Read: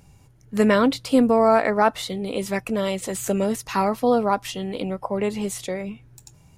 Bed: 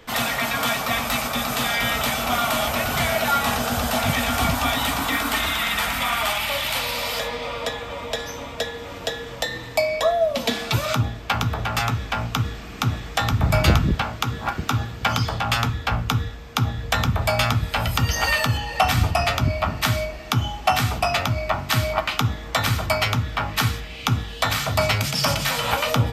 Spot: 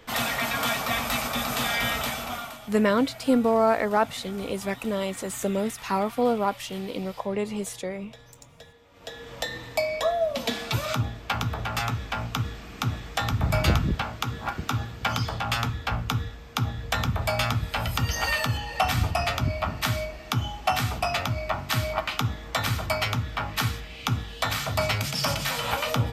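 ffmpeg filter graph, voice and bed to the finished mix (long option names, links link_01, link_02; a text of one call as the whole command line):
ffmpeg -i stem1.wav -i stem2.wav -filter_complex "[0:a]adelay=2150,volume=-4dB[link_01];[1:a]volume=14dB,afade=type=out:start_time=1.85:duration=0.74:silence=0.112202,afade=type=in:start_time=8.92:duration=0.49:silence=0.133352[link_02];[link_01][link_02]amix=inputs=2:normalize=0" out.wav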